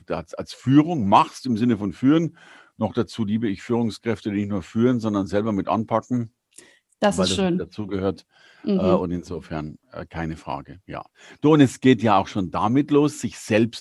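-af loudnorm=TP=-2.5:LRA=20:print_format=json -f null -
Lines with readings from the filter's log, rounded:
"input_i" : "-21.4",
"input_tp" : "-1.8",
"input_lra" : "4.5",
"input_thresh" : "-32.2",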